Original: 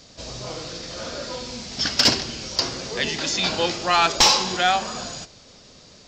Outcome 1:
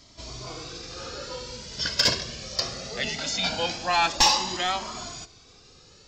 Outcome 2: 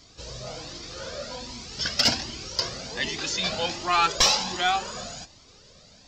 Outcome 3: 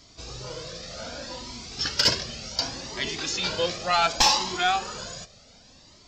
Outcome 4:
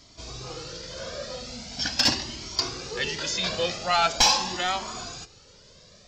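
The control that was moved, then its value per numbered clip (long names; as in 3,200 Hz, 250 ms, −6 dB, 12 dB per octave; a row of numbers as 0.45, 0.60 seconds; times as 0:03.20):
flanger whose copies keep moving one way, speed: 0.21, 1.3, 0.67, 0.42 Hertz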